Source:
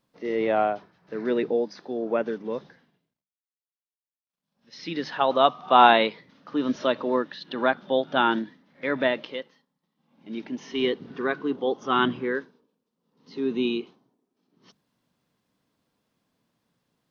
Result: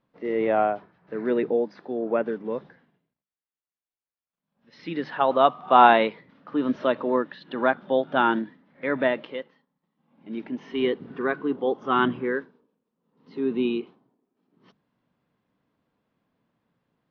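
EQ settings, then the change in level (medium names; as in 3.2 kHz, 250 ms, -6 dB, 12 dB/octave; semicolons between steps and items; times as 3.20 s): low-pass 2.4 kHz 12 dB/octave; +1.0 dB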